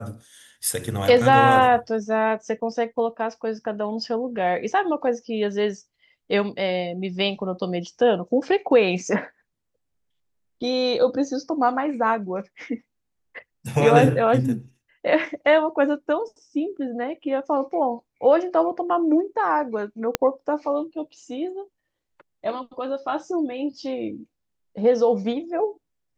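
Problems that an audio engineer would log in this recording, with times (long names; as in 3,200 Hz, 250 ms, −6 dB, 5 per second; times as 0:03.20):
0:20.15: click −4 dBFS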